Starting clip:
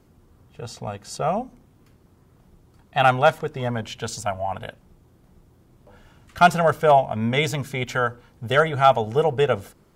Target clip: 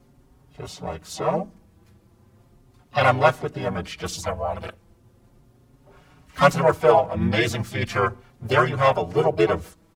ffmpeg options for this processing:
ffmpeg -i in.wav -filter_complex "[0:a]asplit=3[link_01][link_02][link_03];[link_02]asetrate=35002,aresample=44100,atempo=1.25992,volume=0dB[link_04];[link_03]asetrate=66075,aresample=44100,atempo=0.66742,volume=-10dB[link_05];[link_01][link_04][link_05]amix=inputs=3:normalize=0,asplit=2[link_06][link_07];[link_07]adelay=5.2,afreqshift=0.36[link_08];[link_06][link_08]amix=inputs=2:normalize=1" out.wav

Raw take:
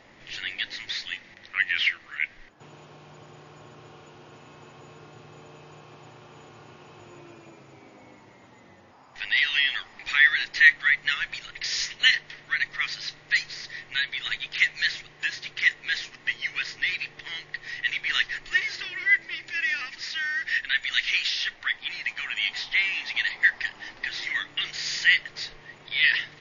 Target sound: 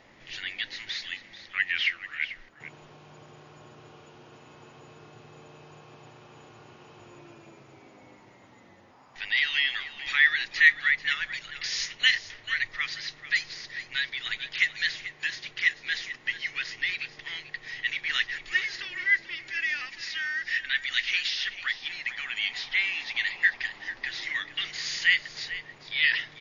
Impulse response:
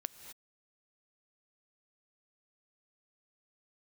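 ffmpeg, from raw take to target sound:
-filter_complex "[0:a]asettb=1/sr,asplit=3[link_01][link_02][link_03];[link_01]atrim=end=12.134[link_04];[link_02]atrim=start=12.13:end=12.77,asetpts=PTS-STARTPTS,afade=type=in:duration=0.004:curve=qsin,afade=type=out:start_time=0.636:duration=0.004:curve=qsin,lowshelf=frequency=120:width_type=q:width=3:gain=6[link_05];[link_03]atrim=start=12.766[link_06];[link_04][link_05]acrossfade=duration=0.004:curve1=hsin:curve2=qsin[link_07];[link_07][link_06]acrossfade=duration=0.004:curve1=qsin:curve2=hsin,aecho=1:1:439:0.2,volume=-2.5dB"

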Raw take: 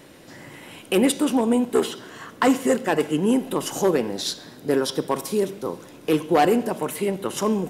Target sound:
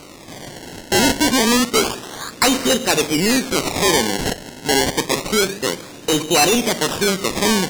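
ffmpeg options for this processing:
ffmpeg -i in.wav -af "acrusher=samples=25:mix=1:aa=0.000001:lfo=1:lforange=25:lforate=0.28,apsyclip=19dB,equalizer=frequency=6100:width_type=o:width=2.5:gain=10,volume=-13dB" out.wav

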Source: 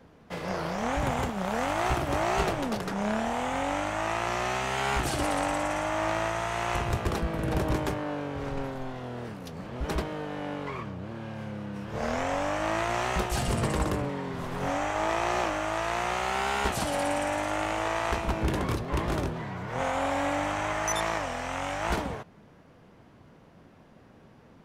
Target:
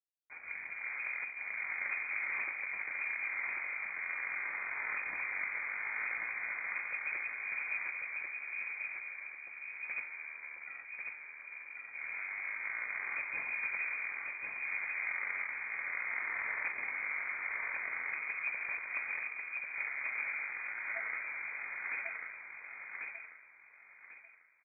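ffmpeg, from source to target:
ffmpeg -i in.wav -af "bandreject=frequency=54.78:width_type=h:width=4,bandreject=frequency=109.56:width_type=h:width=4,bandreject=frequency=164.34:width_type=h:width=4,bandreject=frequency=219.12:width_type=h:width=4,bandreject=frequency=273.9:width_type=h:width=4,bandreject=frequency=328.68:width_type=h:width=4,asetrate=22696,aresample=44100,atempo=1.94306,aeval=exprs='sgn(val(0))*max(abs(val(0))-0.00708,0)':channel_layout=same,aecho=1:1:1093|2186|3279|4372:0.668|0.187|0.0524|0.0147,lowpass=frequency=2100:width_type=q:width=0.5098,lowpass=frequency=2100:width_type=q:width=0.6013,lowpass=frequency=2100:width_type=q:width=0.9,lowpass=frequency=2100:width_type=q:width=2.563,afreqshift=-2500,volume=-9dB" out.wav

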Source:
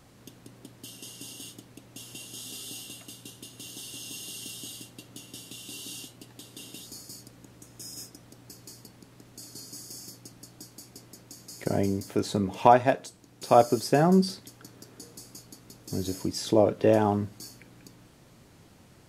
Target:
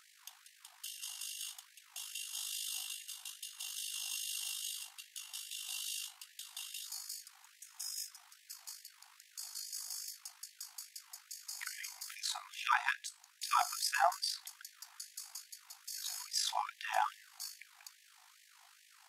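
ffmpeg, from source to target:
ffmpeg -i in.wav -af "tremolo=f=51:d=0.621,afftfilt=real='re*gte(b*sr/1024,680*pow(1700/680,0.5+0.5*sin(2*PI*2.4*pts/sr)))':imag='im*gte(b*sr/1024,680*pow(1700/680,0.5+0.5*sin(2*PI*2.4*pts/sr)))':win_size=1024:overlap=0.75,volume=2.5dB" out.wav

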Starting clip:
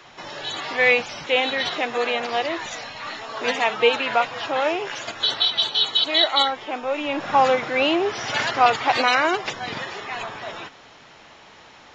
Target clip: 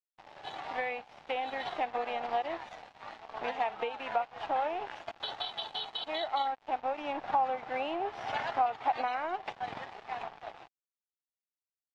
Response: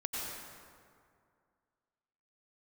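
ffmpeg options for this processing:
-af "aeval=exprs='sgn(val(0))*max(abs(val(0))-0.0237,0)':channel_layout=same,lowpass=3100,acompressor=threshold=-26dB:ratio=10,equalizer=frequency=780:width_type=o:width=0.6:gain=12.5,volume=-8dB"

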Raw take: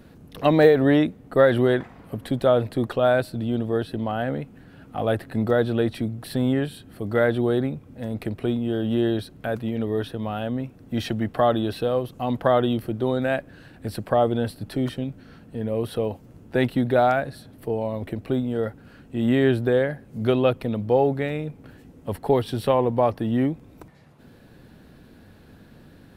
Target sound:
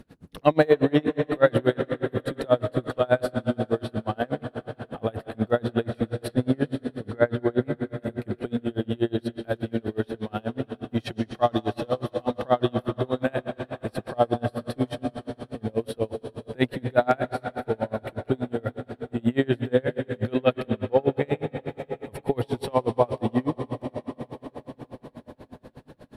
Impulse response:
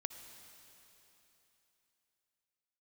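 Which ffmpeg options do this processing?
-filter_complex "[0:a]asettb=1/sr,asplit=3[link_01][link_02][link_03];[link_01]atrim=end=6.284[link_04];[link_02]atrim=start=6.28:end=7.63,asetpts=PTS-STARTPTS,afade=type=in:duration=0.004:curve=qsin,afade=type=out:start_time=1.346:duration=0.004:curve=qsin,aemphasis=mode=reproduction:type=75fm[link_05];[link_03]atrim=start=7.626[link_06];[link_04][link_05]acrossfade=duration=0.004:curve1=hsin:curve2=qsin[link_07];[link_07][link_06]acrossfade=duration=0.004:curve1=qsin:curve2=hsin[link_08];[1:a]atrim=start_sample=2205,asetrate=22050,aresample=44100[link_09];[link_08][link_09]afir=irnorm=-1:irlink=0,aeval=exprs='val(0)*pow(10,-32*(0.5-0.5*cos(2*PI*8.3*n/s))/20)':channel_layout=same,volume=1.5dB"

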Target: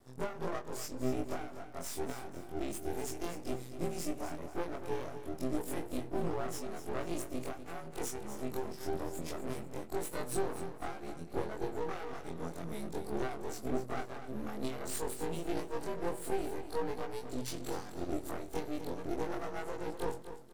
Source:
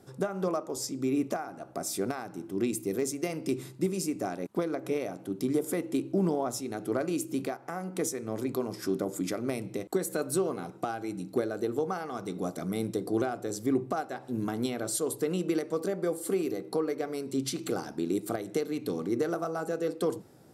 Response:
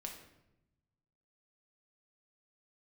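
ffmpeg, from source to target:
-af "afftfilt=real='re':imag='-im':win_size=2048:overlap=0.75,aeval=exprs='max(val(0),0)':channel_layout=same,aecho=1:1:246|492|738|984:0.282|0.093|0.0307|0.0101,volume=1dB"

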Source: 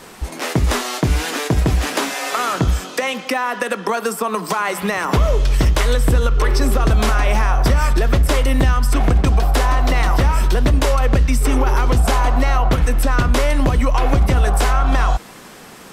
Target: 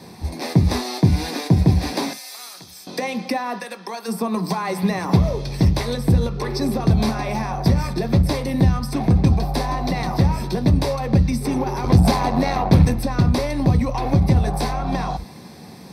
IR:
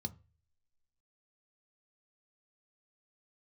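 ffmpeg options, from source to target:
-filter_complex "[0:a]asettb=1/sr,asplit=3[link_01][link_02][link_03];[link_01]atrim=end=2.134[link_04];[link_02]atrim=start=2.13:end=2.87,asetpts=PTS-STARTPTS,afade=type=in:duration=0.004:curve=qsin,afade=type=out:start_time=0.736:duration=0.004:curve=qsin,aderivative[link_05];[link_03]atrim=start=2.866[link_06];[link_04][link_05]acrossfade=duration=0.004:curve1=hsin:curve2=qsin[link_07];[link_07][link_06]acrossfade=duration=0.004:curve1=qsin:curve2=hsin,asplit=3[link_08][link_09][link_10];[link_08]afade=type=out:start_time=3.58:duration=0.02[link_11];[link_09]highpass=frequency=1400:poles=1,afade=type=in:start_time=3.58:duration=0.02,afade=type=out:start_time=4.07:duration=0.02[link_12];[link_10]afade=type=in:start_time=4.07:duration=0.02[link_13];[link_11][link_12][link_13]amix=inputs=3:normalize=0,asettb=1/sr,asplit=3[link_14][link_15][link_16];[link_14]atrim=end=11.844[link_17];[link_15]atrim=start=11.84:end=12.94,asetpts=PTS-STARTPTS,afade=type=in:duration=0.004:curve=qsin,afade=type=out:start_time=1.096:duration=0.004:curve=qsin,acontrast=67[link_18];[link_16]atrim=start=12.936[link_19];[link_17][link_18]acrossfade=duration=0.004:curve1=hsin:curve2=qsin[link_20];[link_20][link_19]acrossfade=duration=0.004:curve1=qsin:curve2=hsin,asoftclip=type=tanh:threshold=-6dB[link_21];[1:a]atrim=start_sample=2205,atrim=end_sample=3528[link_22];[link_21][link_22]afir=irnorm=-1:irlink=0,volume=-3.5dB"

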